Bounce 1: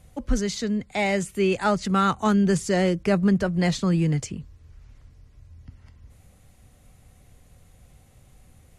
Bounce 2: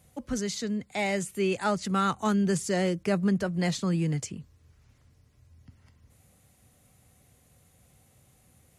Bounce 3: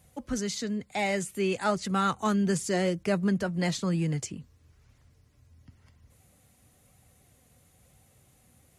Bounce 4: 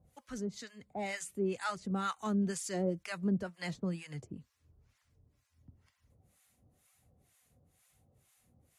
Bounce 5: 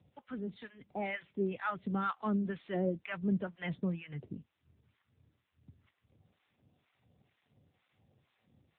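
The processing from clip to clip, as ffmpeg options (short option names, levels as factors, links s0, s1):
-af "highpass=91,highshelf=f=7800:g=8,volume=0.562"
-af "flanger=delay=1:depth=3.5:regen=72:speed=1:shape=triangular,volume=1.68"
-filter_complex "[0:a]acrossover=split=860[s0][s1];[s0]aeval=exprs='val(0)*(1-1/2+1/2*cos(2*PI*2.1*n/s))':c=same[s2];[s1]aeval=exprs='val(0)*(1-1/2-1/2*cos(2*PI*2.1*n/s))':c=same[s3];[s2][s3]amix=inputs=2:normalize=0,volume=0.631"
-filter_complex "[0:a]acrossover=split=2300[s0][s1];[s1]acrusher=bits=4:mode=log:mix=0:aa=0.000001[s2];[s0][s2]amix=inputs=2:normalize=0,volume=1.26" -ar 8000 -c:a libopencore_amrnb -b:a 7950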